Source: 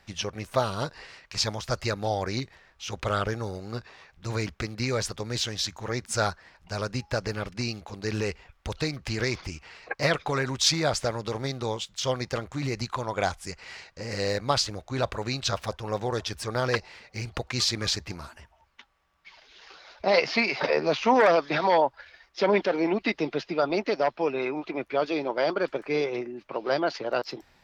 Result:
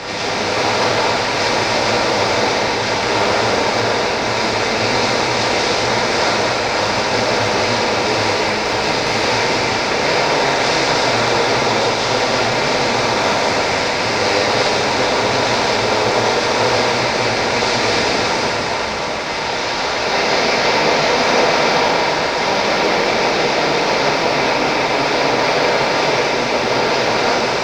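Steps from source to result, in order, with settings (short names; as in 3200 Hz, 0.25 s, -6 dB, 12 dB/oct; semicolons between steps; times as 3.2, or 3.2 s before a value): per-bin compression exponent 0.2; air absorption 110 m; short-mantissa float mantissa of 6-bit; tilt shelf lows -3.5 dB, about 1300 Hz; plate-style reverb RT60 4.6 s, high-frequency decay 0.85×, DRR -9.5 dB; gain -9 dB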